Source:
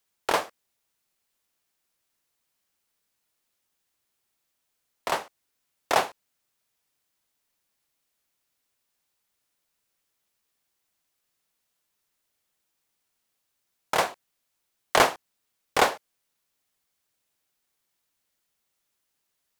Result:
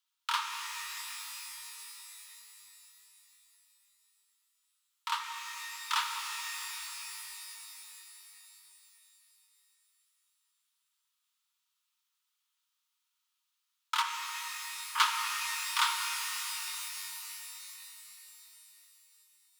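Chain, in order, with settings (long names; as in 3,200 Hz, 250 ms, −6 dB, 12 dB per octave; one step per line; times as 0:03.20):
0:14.02–0:14.99: variable-slope delta modulation 16 kbit/s
Chebyshev high-pass with heavy ripple 900 Hz, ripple 9 dB
reverb with rising layers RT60 3.9 s, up +12 semitones, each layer −2 dB, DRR 3.5 dB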